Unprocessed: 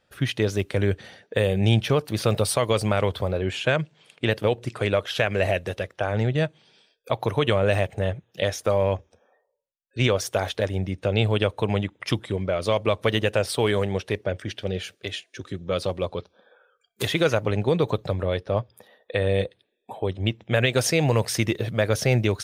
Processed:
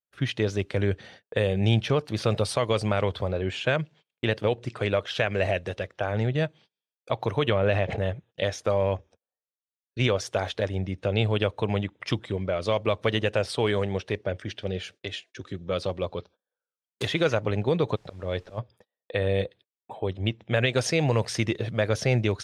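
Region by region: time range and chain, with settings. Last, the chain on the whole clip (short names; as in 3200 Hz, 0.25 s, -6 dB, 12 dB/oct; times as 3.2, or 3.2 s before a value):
7.49–8 LPF 4300 Hz + backwards sustainer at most 27 dB/s
17.95–18.57 auto swell 0.274 s + added noise pink -59 dBFS
whole clip: gate -46 dBFS, range -33 dB; LPF 6700 Hz 12 dB/oct; gain -2.5 dB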